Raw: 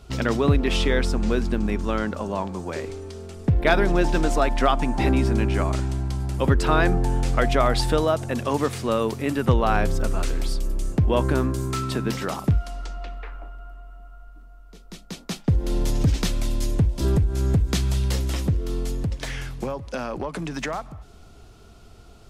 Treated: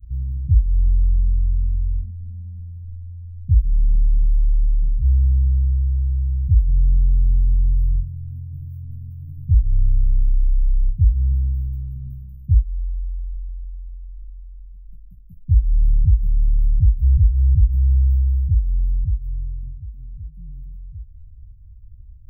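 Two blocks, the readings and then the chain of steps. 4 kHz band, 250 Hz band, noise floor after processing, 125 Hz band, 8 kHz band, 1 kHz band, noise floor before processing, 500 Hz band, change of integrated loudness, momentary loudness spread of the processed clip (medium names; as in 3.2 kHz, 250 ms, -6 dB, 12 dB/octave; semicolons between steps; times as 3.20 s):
under -40 dB, -17.5 dB, -41 dBFS, +5.0 dB, under -40 dB, under -40 dB, -47 dBFS, under -40 dB, +3.5 dB, 19 LU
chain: inverse Chebyshev band-stop 400–8200 Hz, stop band 70 dB; trim +8.5 dB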